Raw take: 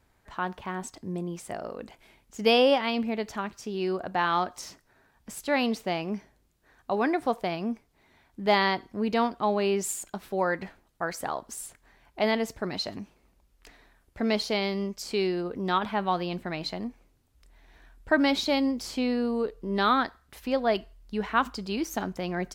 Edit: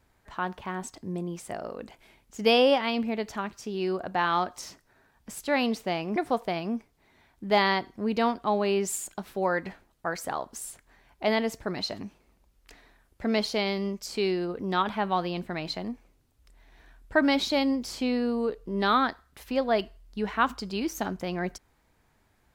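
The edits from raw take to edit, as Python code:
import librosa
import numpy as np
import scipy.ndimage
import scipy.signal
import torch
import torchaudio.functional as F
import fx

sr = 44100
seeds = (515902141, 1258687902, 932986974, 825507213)

y = fx.edit(x, sr, fx.cut(start_s=6.16, length_s=0.96), tone=tone)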